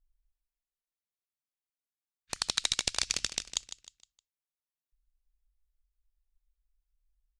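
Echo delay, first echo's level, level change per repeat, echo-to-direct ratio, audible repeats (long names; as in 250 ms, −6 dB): 155 ms, −11.5 dB, −8.5 dB, −11.0 dB, 3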